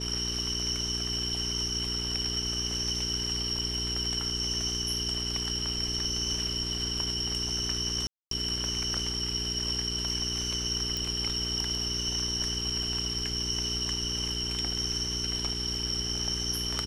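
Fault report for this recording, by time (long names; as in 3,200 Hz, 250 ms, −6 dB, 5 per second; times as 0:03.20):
mains hum 60 Hz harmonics 7 −37 dBFS
0:08.07–0:08.31: drop-out 243 ms
0:10.97: click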